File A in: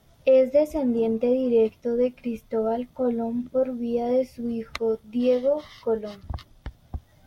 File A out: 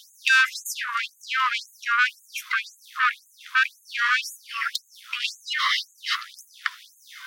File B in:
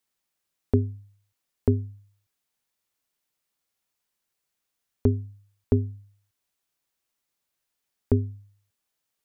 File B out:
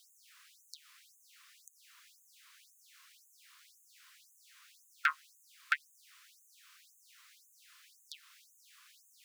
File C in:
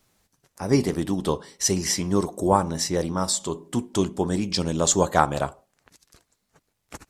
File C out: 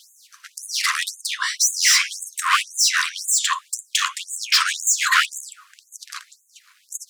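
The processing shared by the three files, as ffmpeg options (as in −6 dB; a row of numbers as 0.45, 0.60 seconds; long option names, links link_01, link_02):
-filter_complex "[0:a]asplit=2[link_01][link_02];[link_02]highpass=frequency=720:poles=1,volume=34dB,asoftclip=type=tanh:threshold=-1dB[link_03];[link_01][link_03]amix=inputs=2:normalize=0,lowpass=frequency=1900:poles=1,volume=-6dB,afftfilt=real='re*gte(b*sr/1024,950*pow(6400/950,0.5+0.5*sin(2*PI*1.9*pts/sr)))':imag='im*gte(b*sr/1024,950*pow(6400/950,0.5+0.5*sin(2*PI*1.9*pts/sr)))':win_size=1024:overlap=0.75,volume=3dB"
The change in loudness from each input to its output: 0.0, −10.0, +5.0 LU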